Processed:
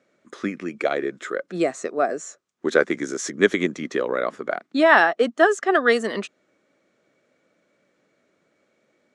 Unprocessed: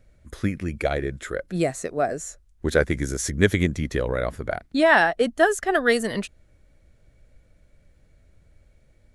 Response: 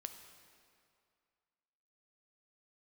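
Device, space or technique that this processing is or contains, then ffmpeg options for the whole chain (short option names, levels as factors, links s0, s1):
television speaker: -af "highpass=f=220:w=0.5412,highpass=f=220:w=1.3066,equalizer=f=380:t=q:w=4:g=3,equalizer=f=1200:t=q:w=4:g=7,equalizer=f=4600:t=q:w=4:g=-3,lowpass=f=7300:w=0.5412,lowpass=f=7300:w=1.3066,volume=1.12"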